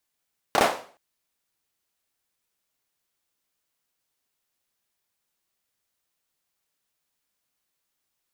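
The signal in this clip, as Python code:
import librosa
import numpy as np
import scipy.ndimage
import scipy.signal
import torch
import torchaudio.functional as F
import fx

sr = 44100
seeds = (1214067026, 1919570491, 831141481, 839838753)

y = fx.drum_clap(sr, seeds[0], length_s=0.42, bursts=3, spacing_ms=30, hz=640.0, decay_s=0.42)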